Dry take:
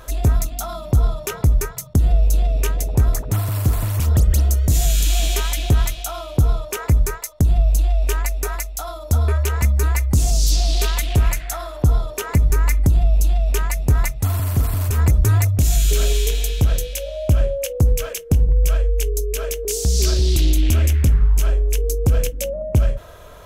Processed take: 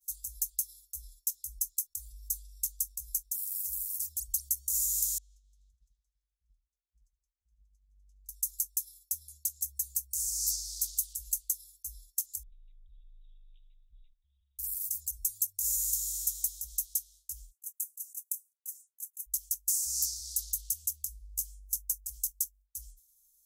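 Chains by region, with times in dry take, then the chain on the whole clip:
5.18–8.29 s: compression 2.5:1, threshold -26 dBFS + low-pass 1.3 kHz + multi-head delay 83 ms, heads second and third, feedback 46%, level -11 dB
12.43–14.59 s: compression 5:1, threshold -16 dBFS + brick-wall FIR low-pass 3.9 kHz + frequency shift -23 Hz
17.51–19.26 s: inverse Chebyshev high-pass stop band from 1.6 kHz, stop band 70 dB + compressor with a negative ratio -35 dBFS, ratio -0.5
whole clip: inverse Chebyshev band-stop 180–1900 Hz, stop band 60 dB; pre-emphasis filter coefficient 0.97; expander -48 dBFS; trim -3.5 dB

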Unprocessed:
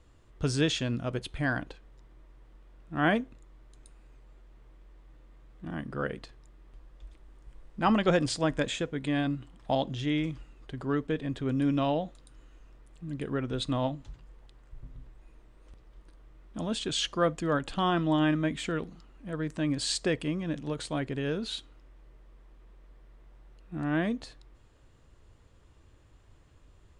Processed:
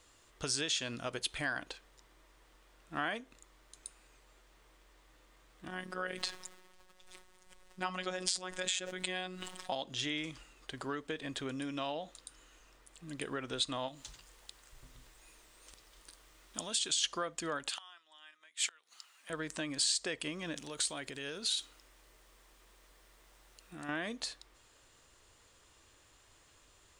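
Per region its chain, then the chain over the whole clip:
5.68–9.72 s: robot voice 184 Hz + decay stretcher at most 31 dB/s
13.88–17.04 s: treble shelf 3 kHz +9 dB + compression, threshold -35 dBFS
17.69–19.30 s: treble shelf 4.4 kHz +5 dB + inverted gate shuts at -22 dBFS, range -26 dB + high-pass 1.2 kHz
20.56–23.89 s: treble shelf 4.9 kHz +8 dB + compression 4:1, threshold -37 dBFS
whole clip: tone controls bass -8 dB, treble +7 dB; compression 12:1, threshold -33 dBFS; tilt shelf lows -5 dB, about 750 Hz

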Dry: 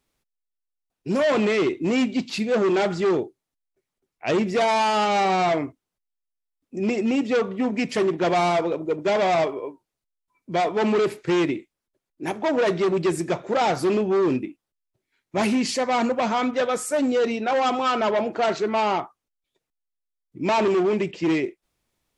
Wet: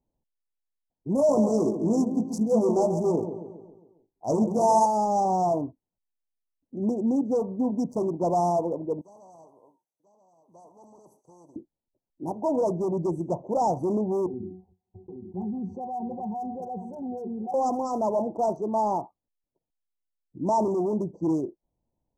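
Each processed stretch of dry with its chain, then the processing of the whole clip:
1.15–4.86 s: treble shelf 7.2 kHz +9 dB + doubling 18 ms -7 dB + feedback delay 136 ms, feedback 52%, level -8.5 dB
9.01–11.56 s: differentiator + delay 986 ms -23.5 dB + spectrum-flattening compressor 2:1
14.26–17.54 s: pitch-class resonator F#, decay 0.16 s + delay 821 ms -22 dB + level flattener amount 70%
whole clip: local Wiener filter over 25 samples; Chebyshev band-stop 960–5800 Hz, order 4; peaking EQ 400 Hz -6 dB 0.54 oct

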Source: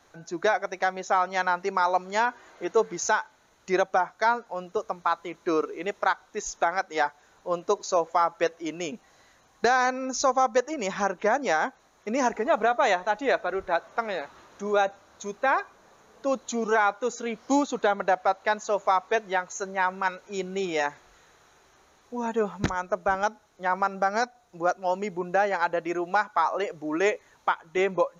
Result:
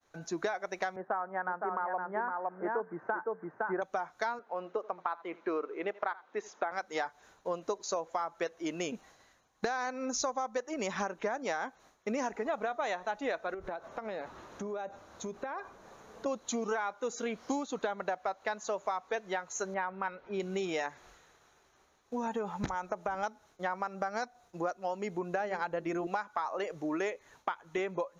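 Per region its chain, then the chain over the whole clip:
0.96–3.82 s: Chebyshev band-pass 130–1700 Hz, order 4 + delay 512 ms -4.5 dB
4.39–6.72 s: band-pass 270–2400 Hz + delay 81 ms -21.5 dB
13.54–16.26 s: tilt shelf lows +4.5 dB, about 1.2 kHz + compression 12:1, threshold -34 dBFS + tape noise reduction on one side only encoder only
19.74–20.40 s: distance through air 340 m + upward compressor, threshold -49 dBFS
22.27–23.24 s: peaking EQ 850 Hz +8.5 dB 0.21 oct + compression 2.5:1, threshold -25 dBFS
25.40–26.07 s: bass shelf 250 Hz +11 dB + hum notches 50/100/150/200/250/300/350/400 Hz
whole clip: expander -52 dBFS; compression, threshold -31 dBFS

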